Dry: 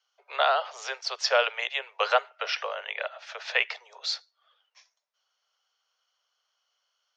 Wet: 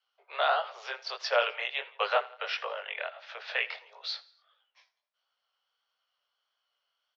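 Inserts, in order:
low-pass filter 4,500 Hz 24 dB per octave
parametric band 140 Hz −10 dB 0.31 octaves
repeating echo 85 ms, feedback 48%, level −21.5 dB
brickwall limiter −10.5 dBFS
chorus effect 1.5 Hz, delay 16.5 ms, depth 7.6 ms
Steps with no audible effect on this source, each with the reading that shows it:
parametric band 140 Hz: nothing at its input below 360 Hz

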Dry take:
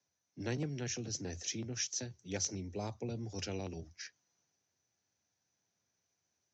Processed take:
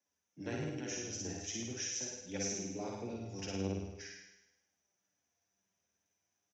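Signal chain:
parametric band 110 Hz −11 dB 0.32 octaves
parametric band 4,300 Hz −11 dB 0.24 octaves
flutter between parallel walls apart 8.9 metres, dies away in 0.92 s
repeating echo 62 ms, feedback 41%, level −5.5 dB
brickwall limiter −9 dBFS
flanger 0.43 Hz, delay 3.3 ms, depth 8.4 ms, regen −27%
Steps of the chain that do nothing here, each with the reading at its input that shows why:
brickwall limiter −9 dBFS: peak of its input −21.5 dBFS

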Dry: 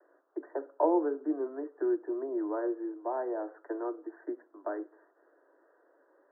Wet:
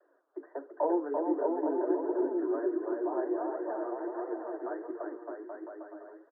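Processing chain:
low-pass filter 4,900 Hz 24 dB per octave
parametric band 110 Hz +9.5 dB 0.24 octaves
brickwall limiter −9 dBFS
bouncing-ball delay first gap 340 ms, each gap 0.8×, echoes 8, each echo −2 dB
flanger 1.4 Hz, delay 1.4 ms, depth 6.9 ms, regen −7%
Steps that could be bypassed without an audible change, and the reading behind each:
low-pass filter 4,900 Hz: nothing at its input above 1,600 Hz
parametric band 110 Hz: nothing at its input below 240 Hz
brickwall limiter −9 dBFS: peak of its input −15.0 dBFS

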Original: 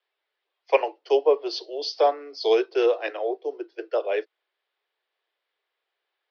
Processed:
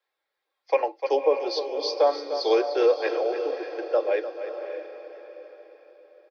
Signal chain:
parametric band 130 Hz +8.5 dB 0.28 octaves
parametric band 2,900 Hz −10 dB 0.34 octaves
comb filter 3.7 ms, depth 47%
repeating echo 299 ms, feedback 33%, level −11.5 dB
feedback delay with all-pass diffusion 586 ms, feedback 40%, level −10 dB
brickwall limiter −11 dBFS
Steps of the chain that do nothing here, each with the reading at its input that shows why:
parametric band 130 Hz: nothing at its input below 270 Hz

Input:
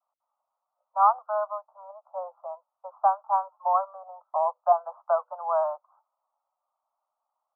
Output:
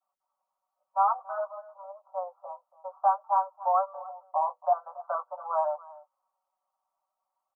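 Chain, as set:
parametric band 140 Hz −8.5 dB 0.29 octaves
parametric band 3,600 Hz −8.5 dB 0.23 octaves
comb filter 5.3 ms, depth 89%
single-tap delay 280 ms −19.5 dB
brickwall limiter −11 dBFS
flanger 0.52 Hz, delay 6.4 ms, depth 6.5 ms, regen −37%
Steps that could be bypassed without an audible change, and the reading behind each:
parametric band 140 Hz: nothing at its input below 480 Hz
parametric band 3,600 Hz: nothing at its input above 1,400 Hz

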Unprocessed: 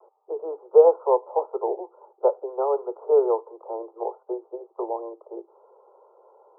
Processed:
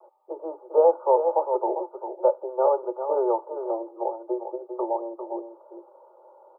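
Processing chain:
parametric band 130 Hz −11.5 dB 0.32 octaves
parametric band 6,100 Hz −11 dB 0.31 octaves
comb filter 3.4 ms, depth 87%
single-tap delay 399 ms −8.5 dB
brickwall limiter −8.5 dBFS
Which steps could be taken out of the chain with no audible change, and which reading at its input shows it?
parametric band 130 Hz: nothing at its input below 320 Hz
parametric band 6,100 Hz: nothing at its input above 1,200 Hz

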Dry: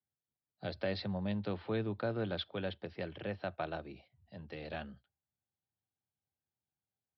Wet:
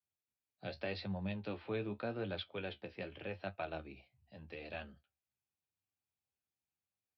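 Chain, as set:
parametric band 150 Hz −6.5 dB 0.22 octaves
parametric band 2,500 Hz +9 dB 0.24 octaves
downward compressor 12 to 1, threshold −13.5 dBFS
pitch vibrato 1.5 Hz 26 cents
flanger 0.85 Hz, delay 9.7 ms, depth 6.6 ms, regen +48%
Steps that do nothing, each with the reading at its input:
downward compressor, threshold −13.5 dBFS: peak of its input −22.0 dBFS

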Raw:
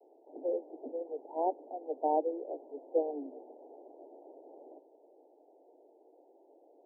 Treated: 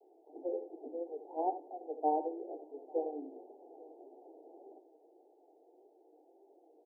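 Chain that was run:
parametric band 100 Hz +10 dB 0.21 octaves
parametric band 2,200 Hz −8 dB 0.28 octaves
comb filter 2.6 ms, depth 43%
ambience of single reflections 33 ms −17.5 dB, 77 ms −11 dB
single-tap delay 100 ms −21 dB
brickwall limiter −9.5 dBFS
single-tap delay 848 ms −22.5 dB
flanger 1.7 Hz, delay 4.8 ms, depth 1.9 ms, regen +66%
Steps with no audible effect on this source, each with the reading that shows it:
parametric band 100 Hz: nothing at its input below 240 Hz
parametric band 2,200 Hz: nothing at its input above 960 Hz
brickwall limiter −9.5 dBFS: peak of its input −17.0 dBFS

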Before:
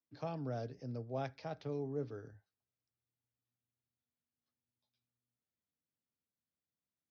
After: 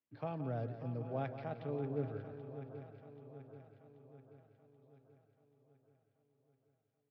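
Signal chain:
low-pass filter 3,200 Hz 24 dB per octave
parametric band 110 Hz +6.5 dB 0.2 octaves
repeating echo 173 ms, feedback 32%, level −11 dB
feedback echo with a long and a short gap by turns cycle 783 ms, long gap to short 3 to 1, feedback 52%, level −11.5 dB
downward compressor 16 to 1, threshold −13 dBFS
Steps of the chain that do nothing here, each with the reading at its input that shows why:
downward compressor, threshold −13 dBFS: peak of its input −25.0 dBFS

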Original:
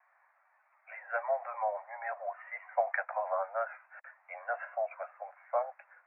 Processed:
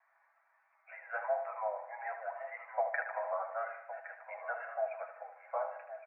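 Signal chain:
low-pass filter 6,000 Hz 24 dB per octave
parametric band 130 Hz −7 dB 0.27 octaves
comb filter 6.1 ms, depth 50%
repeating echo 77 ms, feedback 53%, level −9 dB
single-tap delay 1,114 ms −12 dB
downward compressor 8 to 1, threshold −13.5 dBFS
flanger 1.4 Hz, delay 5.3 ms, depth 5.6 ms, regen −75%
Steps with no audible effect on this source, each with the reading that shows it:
low-pass filter 6,000 Hz: nothing at its input above 2,400 Hz
parametric band 130 Hz: nothing at its input below 450 Hz
downward compressor, threshold −13.5 dBFS: peak of its input −16.0 dBFS

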